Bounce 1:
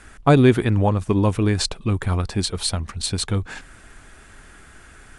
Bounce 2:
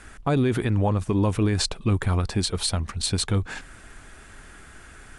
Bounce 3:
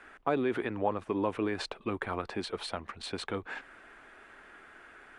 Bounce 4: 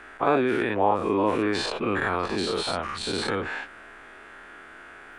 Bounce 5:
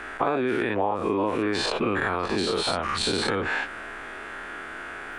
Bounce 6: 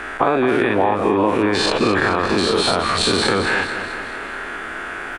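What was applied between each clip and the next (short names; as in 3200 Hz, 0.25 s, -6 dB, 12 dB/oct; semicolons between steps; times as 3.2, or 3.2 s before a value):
limiter -14 dBFS, peak gain reduction 10.5 dB
three-band isolator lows -21 dB, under 280 Hz, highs -19 dB, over 3100 Hz; gain -3 dB
spectral dilation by 0.12 s; gain +3 dB
compressor 5:1, threshold -31 dBFS, peak gain reduction 13.5 dB; gain +8.5 dB
feedback echo 0.217 s, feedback 54%, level -9.5 dB; gain +7.5 dB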